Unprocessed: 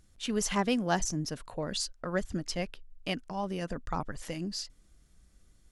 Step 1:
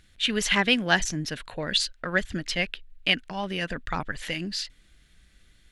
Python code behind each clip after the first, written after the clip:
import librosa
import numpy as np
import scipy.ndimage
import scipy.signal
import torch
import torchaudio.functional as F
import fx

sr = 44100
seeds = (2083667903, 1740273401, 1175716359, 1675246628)

y = fx.band_shelf(x, sr, hz=2500.0, db=12.0, octaves=1.7)
y = F.gain(torch.from_numpy(y), 2.5).numpy()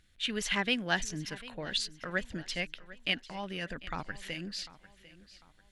y = fx.echo_feedback(x, sr, ms=747, feedback_pct=39, wet_db=-18)
y = F.gain(torch.from_numpy(y), -8.0).numpy()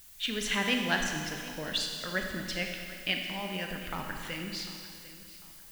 y = fx.dmg_noise_colour(x, sr, seeds[0], colour='blue', level_db=-54.0)
y = fx.rev_schroeder(y, sr, rt60_s=2.1, comb_ms=28, drr_db=2.5)